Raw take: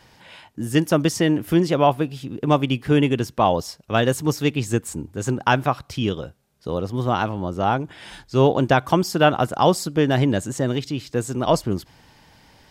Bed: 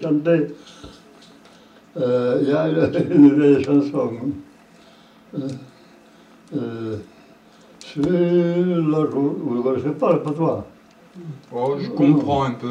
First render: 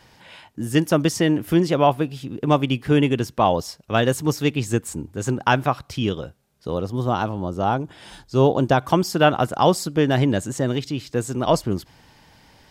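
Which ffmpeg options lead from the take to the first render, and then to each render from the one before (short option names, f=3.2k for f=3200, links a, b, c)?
-filter_complex "[0:a]asettb=1/sr,asplit=3[a][b][c];[a]atrim=end=6.864[d];[b]atrim=start=6.86:end=8.82,asetpts=PTS-STARTPTS,afade=t=in:d=0.004:c=qsin,afade=t=out:st=1.956:d=0.004:c=qsin,equalizer=f=2.1k:t=o:w=1.1:g=-6[e];[c]atrim=start=8.816[f];[d][e]acrossfade=d=0.004:c1=hsin:c2=qsin[g];[g][f]acrossfade=d=0.004:c1=qsin:c2=hsin"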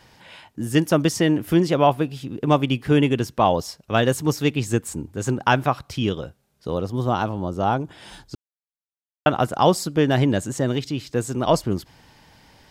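-filter_complex "[0:a]asplit=3[a][b][c];[a]atrim=end=8.35,asetpts=PTS-STARTPTS,afade=t=out:st=8.346:d=0.004:c=hsin[d];[b]atrim=start=8.35:end=9.26,asetpts=PTS-STARTPTS,volume=0[e];[c]atrim=start=9.26,asetpts=PTS-STARTPTS,afade=t=in:d=0.004:c=hsin[f];[d][e][f]concat=n=3:v=0:a=1"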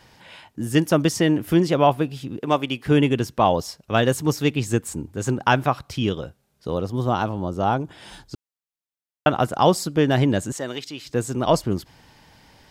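-filter_complex "[0:a]asettb=1/sr,asplit=3[a][b][c];[a]atrim=end=2.394[d];[b]atrim=start=2.39:end=2.86,asetpts=PTS-STARTPTS,afade=t=in:d=0.004:c=qsin,afade=t=out:st=0.466:d=0.004:c=qsin,highpass=f=400:p=1[e];[c]atrim=start=2.856[f];[d][e]acrossfade=d=0.004:c1=hsin:c2=qsin[g];[g][f]acrossfade=d=0.004:c1=qsin:c2=hsin,asettb=1/sr,asplit=3[h][i][j];[h]atrim=end=10.524[k];[i]atrim=start=10.52:end=11.06,asetpts=PTS-STARTPTS,afade=t=in:d=0.004:c=qsin,afade=t=out:st=0.536:d=0.004:c=qsin,highpass=f=770:p=1[l];[j]atrim=start=11.056[m];[k][l]acrossfade=d=0.004:c1=hsin:c2=qsin[n];[n][m]acrossfade=d=0.004:c1=qsin:c2=hsin"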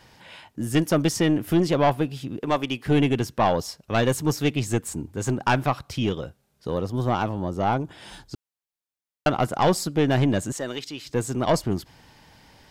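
-af "aeval=exprs='(tanh(3.98*val(0)+0.25)-tanh(0.25))/3.98':c=same"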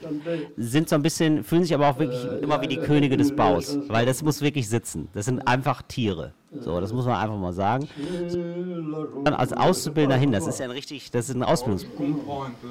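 -filter_complex "[1:a]volume=-11.5dB[a];[0:a][a]amix=inputs=2:normalize=0"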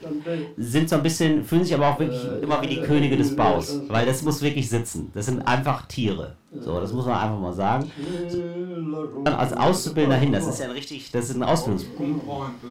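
-filter_complex "[0:a]asplit=2[a][b];[b]adelay=36,volume=-12dB[c];[a][c]amix=inputs=2:normalize=0,asplit=2[d][e];[e]aecho=0:1:37|62:0.376|0.15[f];[d][f]amix=inputs=2:normalize=0"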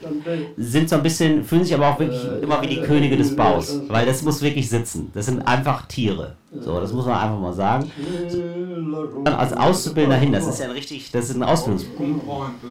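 -af "volume=3dB"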